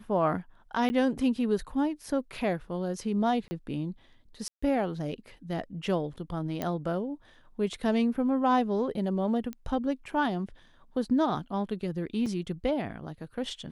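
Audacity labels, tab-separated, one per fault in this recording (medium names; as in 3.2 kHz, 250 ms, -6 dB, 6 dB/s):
0.890000	0.900000	dropout 10 ms
3.480000	3.510000	dropout 30 ms
4.480000	4.620000	dropout 145 ms
6.620000	6.620000	pop -17 dBFS
9.530000	9.530000	pop -24 dBFS
12.260000	12.260000	dropout 4 ms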